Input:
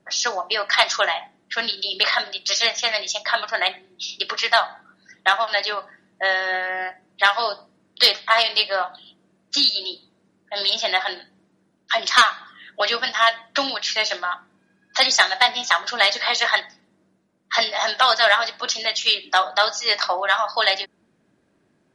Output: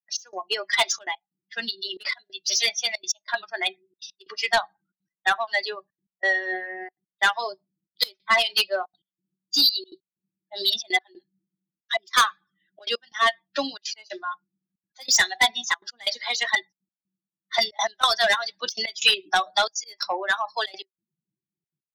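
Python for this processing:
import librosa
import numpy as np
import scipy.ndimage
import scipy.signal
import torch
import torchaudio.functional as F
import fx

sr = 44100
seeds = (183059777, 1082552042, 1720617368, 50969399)

y = fx.bin_expand(x, sr, power=2.0)
y = scipy.signal.sosfilt(scipy.signal.butter(2, 160.0, 'highpass', fs=sr, output='sos'), y)
y = fx.high_shelf(y, sr, hz=5100.0, db=10.0)
y = fx.small_body(y, sr, hz=(380.0, 2000.0), ring_ms=95, db=9)
y = 10.0 ** (-14.5 / 20.0) * np.tanh(y / 10.0 ** (-14.5 / 20.0))
y = fx.step_gate(y, sr, bpm=183, pattern='.x..xxxxxxxx', floor_db=-24.0, edge_ms=4.5)
y = fx.band_squash(y, sr, depth_pct=100, at=(17.58, 19.64))
y = y * 10.0 ** (2.5 / 20.0)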